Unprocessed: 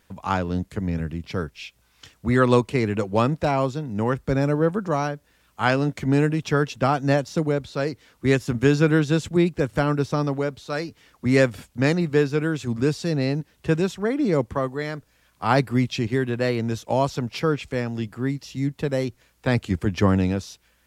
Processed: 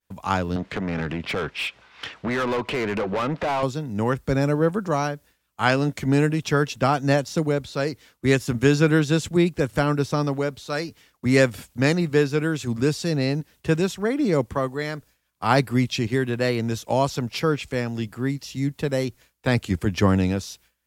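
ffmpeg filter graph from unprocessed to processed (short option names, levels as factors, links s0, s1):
-filter_complex "[0:a]asettb=1/sr,asplit=3[s0][s1][s2];[s0]atrim=end=0.564[s3];[s1]atrim=start=0.56:end=3.63,asetpts=PTS-STARTPTS,afade=t=in:d=0.004:c=qsin,afade=t=out:st=3.066:d=0.004:c=qsin,lowpass=3500,acompressor=threshold=0.0398:ratio=3:attack=3.2:release=140:knee=1:detection=peak,asplit=2[s4][s5];[s5]highpass=f=720:p=1,volume=17.8,asoftclip=type=tanh:threshold=0.141[s6];[s4][s6]amix=inputs=2:normalize=0,lowpass=f=2300:p=1,volume=0.501[s7];[s2]atrim=start=3.626[s8];[s3][s7]acrossfade=d=0.004:c1=hsin:c2=qsin[s9];[s9][s8]acrossfade=d=0.004:c1=qsin:c2=hsin,aemphasis=mode=production:type=75kf,agate=range=0.0224:threshold=0.00708:ratio=3:detection=peak,highshelf=f=5300:g=-10"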